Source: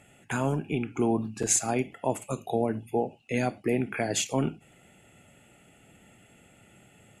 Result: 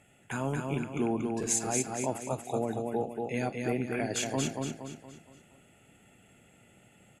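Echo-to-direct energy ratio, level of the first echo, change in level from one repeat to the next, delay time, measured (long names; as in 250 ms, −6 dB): −2.5 dB, −3.5 dB, −7.5 dB, 234 ms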